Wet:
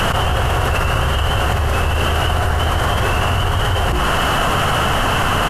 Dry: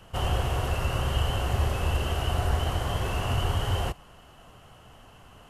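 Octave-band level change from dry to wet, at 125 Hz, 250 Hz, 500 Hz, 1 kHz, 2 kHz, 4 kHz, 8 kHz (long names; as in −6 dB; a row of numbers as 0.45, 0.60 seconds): +9.5, +13.0, +13.0, +16.0, +18.0, +14.0, +13.5 decibels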